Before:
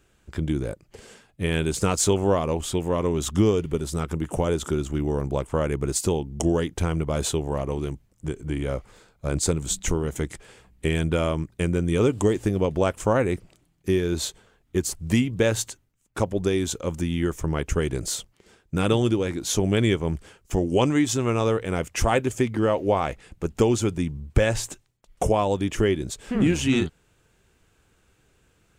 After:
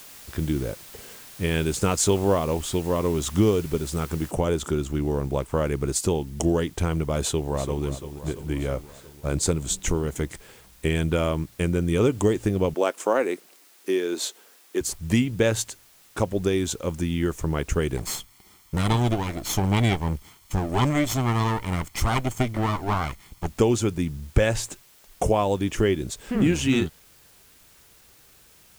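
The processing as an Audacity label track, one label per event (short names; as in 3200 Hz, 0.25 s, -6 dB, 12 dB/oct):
4.310000	4.310000	noise floor step -45 dB -55 dB
7.200000	7.840000	echo throw 0.34 s, feedback 65%, level -11.5 dB
12.740000	14.810000	HPF 280 Hz 24 dB/oct
17.970000	23.490000	minimum comb delay 0.93 ms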